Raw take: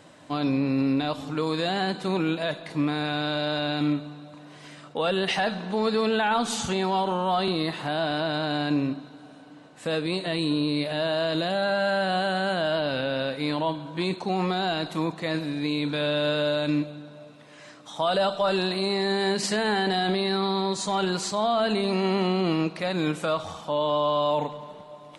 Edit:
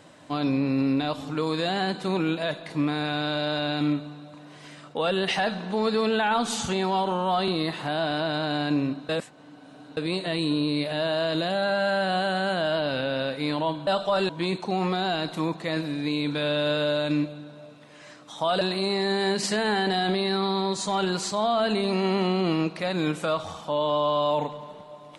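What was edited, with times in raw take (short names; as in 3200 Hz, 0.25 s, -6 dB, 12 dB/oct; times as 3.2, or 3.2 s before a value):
9.09–9.97 reverse
18.19–18.61 move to 13.87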